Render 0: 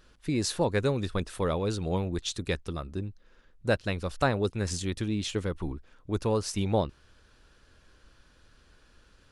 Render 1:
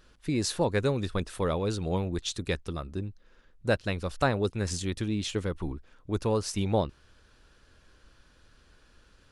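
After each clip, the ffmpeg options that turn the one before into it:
ffmpeg -i in.wav -af anull out.wav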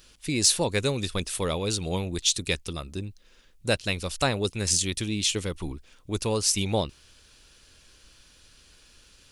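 ffmpeg -i in.wav -af "aexciter=amount=2.8:drive=6.6:freq=2200" out.wav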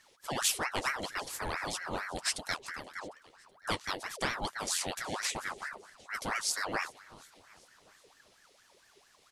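ffmpeg -i in.wav -af "flanger=delay=4.2:depth=9.9:regen=-31:speed=1.7:shape=sinusoidal,aecho=1:1:376|752|1128|1504:0.0891|0.0472|0.025|0.0133,aeval=exprs='val(0)*sin(2*PI*1100*n/s+1100*0.65/4.4*sin(2*PI*4.4*n/s))':channel_layout=same,volume=-2dB" out.wav

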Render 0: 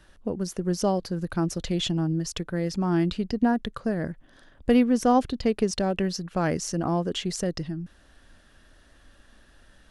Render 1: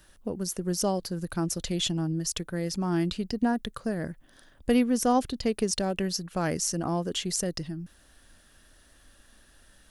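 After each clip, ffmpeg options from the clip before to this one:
ffmpeg -i in.wav -af "aemphasis=mode=production:type=50fm,volume=-3dB" out.wav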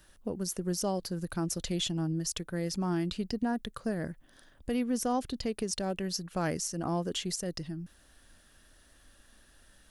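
ffmpeg -i in.wav -af "alimiter=limit=-19.5dB:level=0:latency=1:release=177,volume=-2.5dB" out.wav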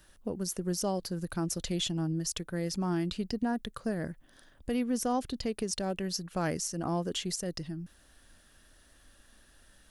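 ffmpeg -i in.wav -af anull out.wav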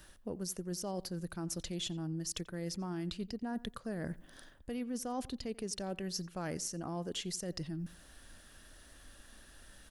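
ffmpeg -i in.wav -filter_complex "[0:a]areverse,acompressor=threshold=-40dB:ratio=6,areverse,asplit=2[link_01][link_02];[link_02]adelay=88,lowpass=frequency=3300:poles=1,volume=-20dB,asplit=2[link_03][link_04];[link_04]adelay=88,lowpass=frequency=3300:poles=1,volume=0.26[link_05];[link_01][link_03][link_05]amix=inputs=3:normalize=0,volume=3.5dB" out.wav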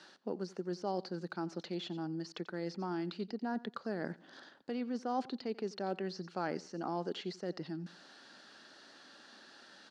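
ffmpeg -i in.wav -filter_complex "[0:a]acrossover=split=2600[link_01][link_02];[link_02]acompressor=threshold=-56dB:ratio=4:attack=1:release=60[link_03];[link_01][link_03]amix=inputs=2:normalize=0,highpass=frequency=190:width=0.5412,highpass=frequency=190:width=1.3066,equalizer=frequency=380:width_type=q:width=4:gain=4,equalizer=frequency=830:width_type=q:width=4:gain=7,equalizer=frequency=1400:width_type=q:width=4:gain=5,equalizer=frequency=4400:width_type=q:width=4:gain=10,lowpass=frequency=6200:width=0.5412,lowpass=frequency=6200:width=1.3066,volume=1dB" out.wav

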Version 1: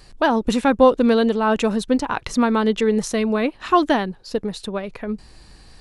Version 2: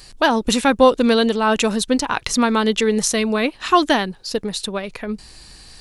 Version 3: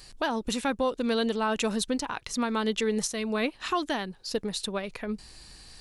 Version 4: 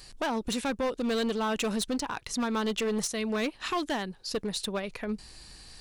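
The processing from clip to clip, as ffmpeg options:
ffmpeg -i in.wav -af "highshelf=frequency=2300:gain=11.5" out.wav
ffmpeg -i in.wav -af "alimiter=limit=-11.5dB:level=0:latency=1:release=439,volume=-6.5dB" out.wav
ffmpeg -i in.wav -af "volume=25dB,asoftclip=hard,volume=-25dB" out.wav

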